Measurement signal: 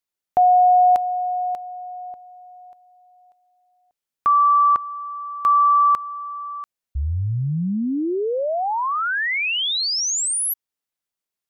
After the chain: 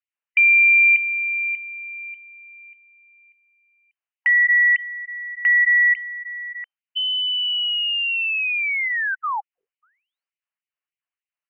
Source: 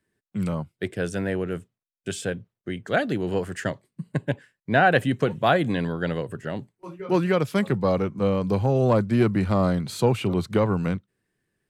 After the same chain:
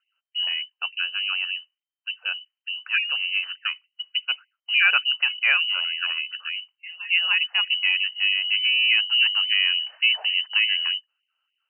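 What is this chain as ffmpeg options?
-af "lowpass=f=2600:t=q:w=0.5098,lowpass=f=2600:t=q:w=0.6013,lowpass=f=2600:t=q:w=0.9,lowpass=f=2600:t=q:w=2.563,afreqshift=-3100,asubboost=boost=8.5:cutoff=130,afftfilt=real='re*gte(b*sr/1024,390*pow(2000/390,0.5+0.5*sin(2*PI*3.4*pts/sr)))':imag='im*gte(b*sr/1024,390*pow(2000/390,0.5+0.5*sin(2*PI*3.4*pts/sr)))':win_size=1024:overlap=0.75"

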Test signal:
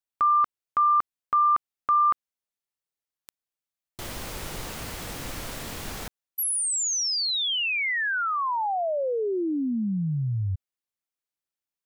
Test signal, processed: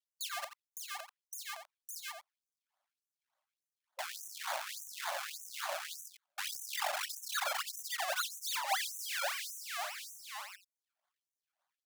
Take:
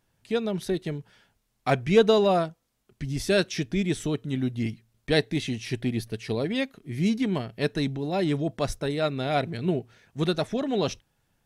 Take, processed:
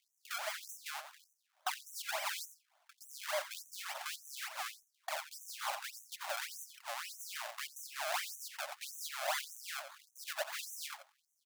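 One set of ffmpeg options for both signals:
-filter_complex "[0:a]acompressor=threshold=0.02:ratio=6:attack=40:release=155:knee=1:detection=rms,acrusher=samples=32:mix=1:aa=0.000001:lfo=1:lforange=32:lforate=3.5,alimiter=level_in=1.5:limit=0.0631:level=0:latency=1:release=480,volume=0.668,asoftclip=type=tanh:threshold=0.0188,asplit=2[s0][s1];[s1]adelay=87.46,volume=0.316,highshelf=f=4000:g=-1.97[s2];[s0][s2]amix=inputs=2:normalize=0,afftfilt=real='re*gte(b*sr/1024,520*pow(5900/520,0.5+0.5*sin(2*PI*1.7*pts/sr)))':imag='im*gte(b*sr/1024,520*pow(5900/520,0.5+0.5*sin(2*PI*1.7*pts/sr)))':win_size=1024:overlap=0.75,volume=2.51"

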